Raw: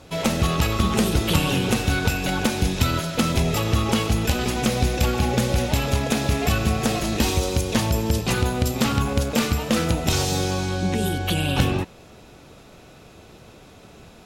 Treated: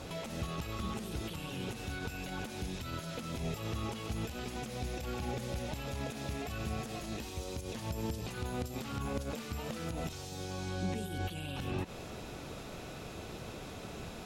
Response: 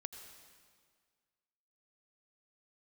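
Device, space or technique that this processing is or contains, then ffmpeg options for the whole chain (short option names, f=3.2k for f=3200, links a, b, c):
de-esser from a sidechain: -filter_complex "[0:a]asplit=2[a][b];[b]highpass=f=5.1k:p=1,apad=whole_len=628609[c];[a][c]sidechaincompress=threshold=-49dB:ratio=16:attack=1.6:release=94,volume=2dB"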